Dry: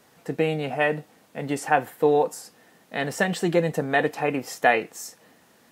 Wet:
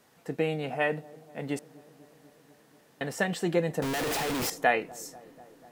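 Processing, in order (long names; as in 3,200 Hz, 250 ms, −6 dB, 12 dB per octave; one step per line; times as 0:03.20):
0:01.59–0:03.01: fill with room tone
0:03.82–0:04.50: sign of each sample alone
delay with a low-pass on its return 245 ms, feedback 75%, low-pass 820 Hz, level −21 dB
level −5 dB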